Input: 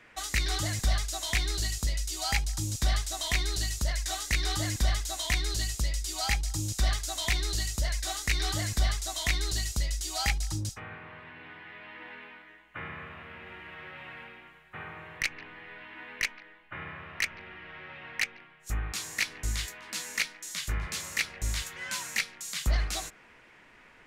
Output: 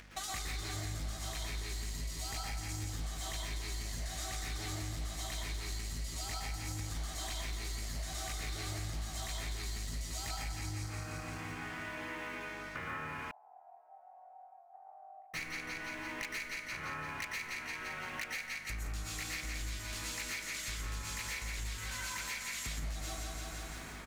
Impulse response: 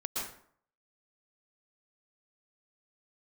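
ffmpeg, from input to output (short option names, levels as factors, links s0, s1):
-filter_complex "[0:a]aecho=1:1:171|342|513|684|855|1026|1197|1368:0.473|0.279|0.165|0.0972|0.0573|0.0338|0.02|0.0118,asoftclip=type=tanh:threshold=0.0398,acompressor=mode=upward:threshold=0.00251:ratio=2.5,aeval=exprs='sgn(val(0))*max(abs(val(0))-0.00178,0)':c=same,aeval=exprs='val(0)+0.001*(sin(2*PI*50*n/s)+sin(2*PI*2*50*n/s)/2+sin(2*PI*3*50*n/s)/3+sin(2*PI*4*50*n/s)/4+sin(2*PI*5*50*n/s)/5)':c=same[s0];[1:a]atrim=start_sample=2205[s1];[s0][s1]afir=irnorm=-1:irlink=0,acompressor=threshold=0.00562:ratio=5,asettb=1/sr,asplit=3[s2][s3][s4];[s2]atrim=end=13.314[s5];[s3]atrim=start=13.31:end=15.34,asetpts=PTS-STARTPTS,afade=t=in:d=0.004:c=qsin,afade=t=out:st=2.026:d=0.004:c=qsin,asuperpass=centerf=740:order=4:qfactor=6[s6];[s4]atrim=start=15.336[s7];[s5][s6]acrossfade=d=0.004:c1=hsin:c2=qsin[s8];[s8][s7]acrossfade=d=0.004:c1=qsin:c2=hsin,volume=2"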